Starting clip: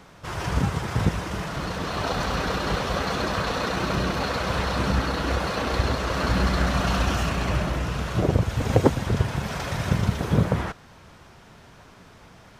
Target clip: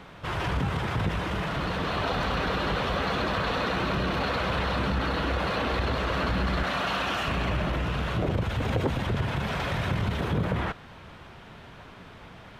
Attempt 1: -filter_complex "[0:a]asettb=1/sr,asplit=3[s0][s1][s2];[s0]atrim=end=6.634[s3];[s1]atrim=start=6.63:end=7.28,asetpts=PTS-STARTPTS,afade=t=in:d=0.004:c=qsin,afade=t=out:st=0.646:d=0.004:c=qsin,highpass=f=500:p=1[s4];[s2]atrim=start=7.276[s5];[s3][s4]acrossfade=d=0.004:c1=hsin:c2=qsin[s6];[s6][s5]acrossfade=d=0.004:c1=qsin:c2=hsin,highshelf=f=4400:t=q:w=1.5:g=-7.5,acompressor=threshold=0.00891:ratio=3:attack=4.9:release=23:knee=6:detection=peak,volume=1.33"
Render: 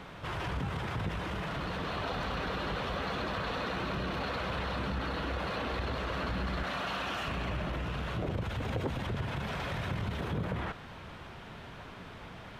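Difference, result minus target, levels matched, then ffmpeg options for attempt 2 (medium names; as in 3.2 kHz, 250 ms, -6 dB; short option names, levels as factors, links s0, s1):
compression: peak gain reduction +7.5 dB
-filter_complex "[0:a]asettb=1/sr,asplit=3[s0][s1][s2];[s0]atrim=end=6.634[s3];[s1]atrim=start=6.63:end=7.28,asetpts=PTS-STARTPTS,afade=t=in:d=0.004:c=qsin,afade=t=out:st=0.646:d=0.004:c=qsin,highpass=f=500:p=1[s4];[s2]atrim=start=7.276[s5];[s3][s4]acrossfade=d=0.004:c1=hsin:c2=qsin[s6];[s6][s5]acrossfade=d=0.004:c1=qsin:c2=hsin,highshelf=f=4400:t=q:w=1.5:g=-7.5,acompressor=threshold=0.0316:ratio=3:attack=4.9:release=23:knee=6:detection=peak,volume=1.33"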